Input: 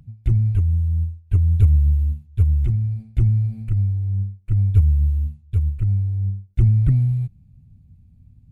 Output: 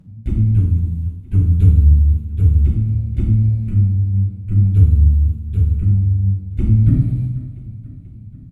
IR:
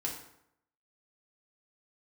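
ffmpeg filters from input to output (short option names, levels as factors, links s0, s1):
-filter_complex "[0:a]equalizer=f=240:t=o:w=1.1:g=11.5,aecho=1:1:487|974|1461|1948|2435|2922:0.133|0.08|0.048|0.0288|0.0173|0.0104[s0];[1:a]atrim=start_sample=2205,asetrate=27342,aresample=44100[s1];[s0][s1]afir=irnorm=-1:irlink=0,volume=0.631"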